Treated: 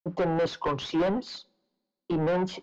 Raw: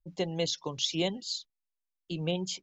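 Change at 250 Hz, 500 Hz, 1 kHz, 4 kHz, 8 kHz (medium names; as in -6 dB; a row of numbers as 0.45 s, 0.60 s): +6.0 dB, +7.0 dB, +12.5 dB, -6.5 dB, no reading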